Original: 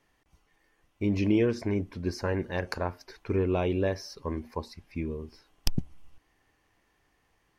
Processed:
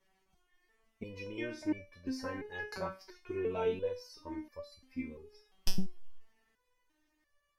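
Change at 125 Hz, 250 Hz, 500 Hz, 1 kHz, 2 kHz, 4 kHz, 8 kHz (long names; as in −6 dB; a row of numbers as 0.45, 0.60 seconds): −16.0, −10.5, −7.5, −7.0, −5.5, −5.5, −5.0 decibels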